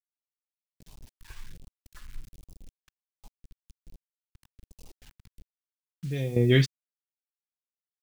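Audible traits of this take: random-step tremolo 1.1 Hz, depth 85%; a quantiser's noise floor 10-bit, dither none; phasing stages 2, 1.3 Hz, lowest notch 530–1600 Hz

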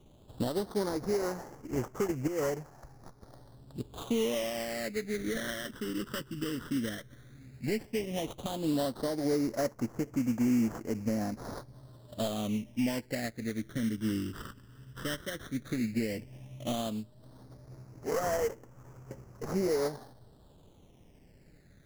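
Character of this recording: aliases and images of a low sample rate 2500 Hz, jitter 20%; phasing stages 12, 0.12 Hz, lowest notch 720–3700 Hz

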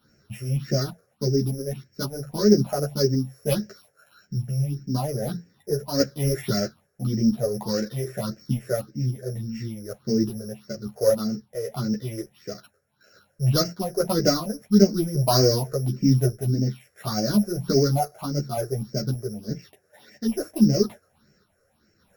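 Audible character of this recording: a buzz of ramps at a fixed pitch in blocks of 8 samples; phasing stages 6, 1.7 Hz, lowest notch 230–1000 Hz; random-step tremolo; a shimmering, thickened sound

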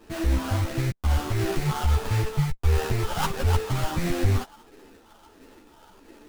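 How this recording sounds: phasing stages 12, 1.5 Hz, lowest notch 400–1500 Hz; aliases and images of a low sample rate 2200 Hz, jitter 20%; a shimmering, thickened sound

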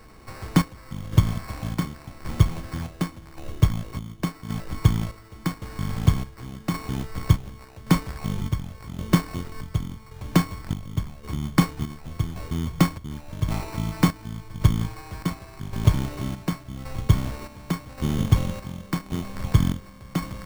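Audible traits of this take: a buzz of ramps at a fixed pitch in blocks of 8 samples; chopped level 0.89 Hz, depth 60%, duty 55%; aliases and images of a low sample rate 3300 Hz, jitter 0%

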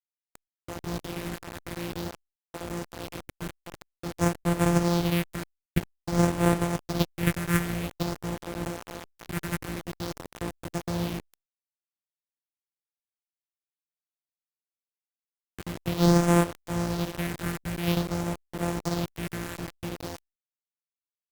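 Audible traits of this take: a buzz of ramps at a fixed pitch in blocks of 256 samples; phasing stages 4, 0.5 Hz, lowest notch 700–4700 Hz; a quantiser's noise floor 6-bit, dither none; Opus

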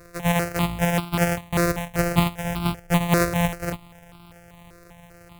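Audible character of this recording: a buzz of ramps at a fixed pitch in blocks of 256 samples; notches that jump at a steady rate 5.1 Hz 860–1800 Hz

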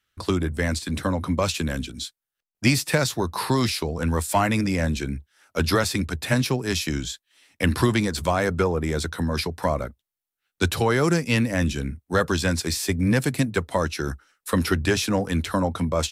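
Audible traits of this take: noise floor -88 dBFS; spectral tilt -5.0 dB/oct

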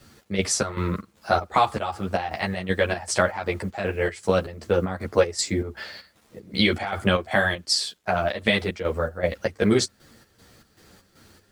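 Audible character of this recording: a quantiser's noise floor 10-bit, dither none; chopped level 2.6 Hz, depth 65%, duty 60%; a shimmering, thickened sound

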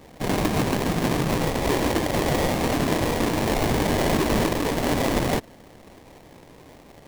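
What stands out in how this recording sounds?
aliases and images of a low sample rate 1400 Hz, jitter 20%

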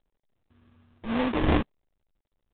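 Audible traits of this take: a buzz of ramps at a fixed pitch in blocks of 32 samples; phasing stages 8, 1.8 Hz, lowest notch 660–2400 Hz; aliases and images of a low sample rate 1400 Hz, jitter 20%; µ-law

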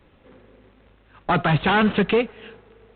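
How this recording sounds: G.726

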